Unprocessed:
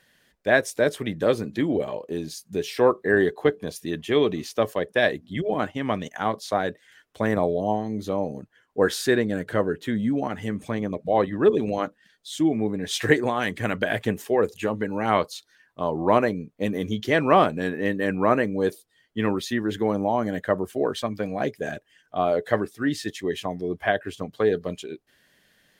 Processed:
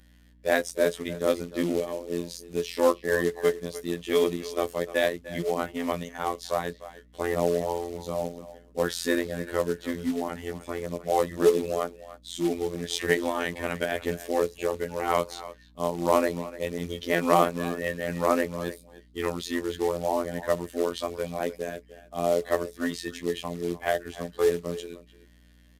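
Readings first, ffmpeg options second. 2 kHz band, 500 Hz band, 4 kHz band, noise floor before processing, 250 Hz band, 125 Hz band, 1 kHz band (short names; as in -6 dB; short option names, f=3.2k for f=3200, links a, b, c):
-5.0 dB, -2.5 dB, -2.5 dB, -65 dBFS, -5.5 dB, -6.0 dB, -3.5 dB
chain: -filter_complex "[0:a]afftfilt=real='hypot(re,im)*cos(PI*b)':imag='0':win_size=2048:overlap=0.75,asplit=2[a][b];[b]adelay=300,highpass=300,lowpass=3.4k,asoftclip=type=hard:threshold=-12dB,volume=-15dB[c];[a][c]amix=inputs=2:normalize=0,acrusher=bits=4:mode=log:mix=0:aa=0.000001,bandreject=f=1.6k:w=12,aresample=32000,aresample=44100,aeval=exprs='val(0)+0.002*(sin(2*PI*60*n/s)+sin(2*PI*2*60*n/s)/2+sin(2*PI*3*60*n/s)/3+sin(2*PI*4*60*n/s)/4+sin(2*PI*5*60*n/s)/5)':c=same,equalizer=f=110:t=o:w=0.47:g=-12"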